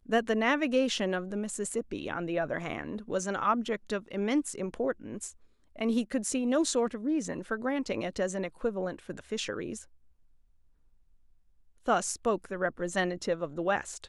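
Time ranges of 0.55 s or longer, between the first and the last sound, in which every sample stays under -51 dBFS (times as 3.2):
9.85–11.86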